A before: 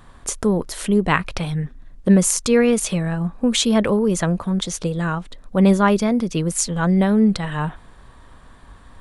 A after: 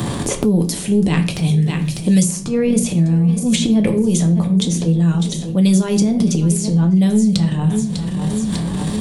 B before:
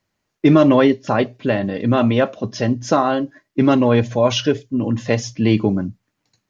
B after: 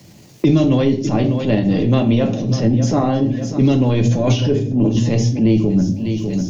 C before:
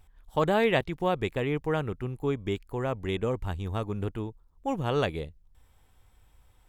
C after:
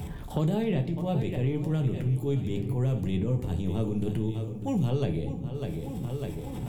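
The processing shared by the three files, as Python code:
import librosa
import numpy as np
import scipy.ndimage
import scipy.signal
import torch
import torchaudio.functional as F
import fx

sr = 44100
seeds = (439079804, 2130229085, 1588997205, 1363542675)

p1 = scipy.signal.sosfilt(scipy.signal.butter(2, 140.0, 'highpass', fs=sr, output='sos'), x)
p2 = fx.bass_treble(p1, sr, bass_db=12, treble_db=2)
p3 = p2 + fx.echo_feedback(p2, sr, ms=599, feedback_pct=40, wet_db=-20.0, dry=0)
p4 = fx.transient(p3, sr, attack_db=-11, sustain_db=8)
p5 = fx.peak_eq(p4, sr, hz=1400.0, db=-12.5, octaves=1.2)
p6 = fx.room_shoebox(p5, sr, seeds[0], volume_m3=31.0, walls='mixed', distance_m=0.33)
p7 = fx.band_squash(p6, sr, depth_pct=100)
y = p7 * librosa.db_to_amplitude(-3.5)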